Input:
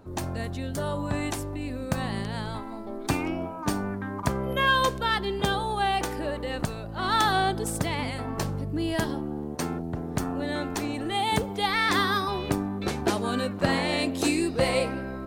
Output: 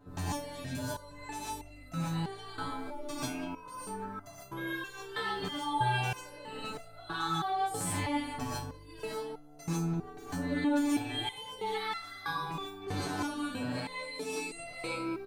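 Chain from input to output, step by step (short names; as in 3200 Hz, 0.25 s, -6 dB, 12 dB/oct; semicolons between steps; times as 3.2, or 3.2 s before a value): comb 6.9 ms, depth 84%; compressor, threshold -29 dBFS, peak gain reduction 14 dB; speakerphone echo 0.19 s, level -12 dB; non-linear reverb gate 0.17 s rising, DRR -7 dB; stepped resonator 3.1 Hz 93–680 Hz; gain +1.5 dB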